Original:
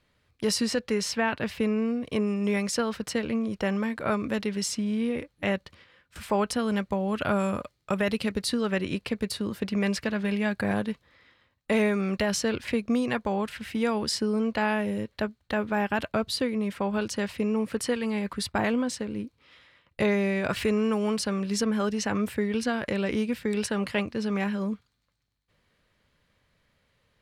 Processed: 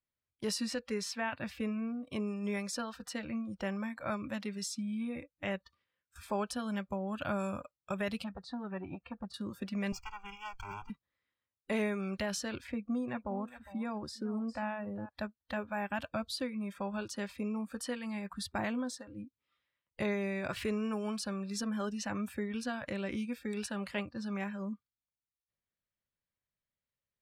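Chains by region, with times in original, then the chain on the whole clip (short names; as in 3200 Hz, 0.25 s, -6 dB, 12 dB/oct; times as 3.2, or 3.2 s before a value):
8.24–9.34 tape spacing loss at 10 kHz 26 dB + core saturation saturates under 530 Hz
9.92–10.9 minimum comb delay 2.1 ms + fixed phaser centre 2600 Hz, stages 8
12.67–15.09 high shelf 2000 Hz -10.5 dB + echo 0.407 s -13 dB
whole clip: notch 470 Hz, Q 15; spectral noise reduction 19 dB; gain -8.5 dB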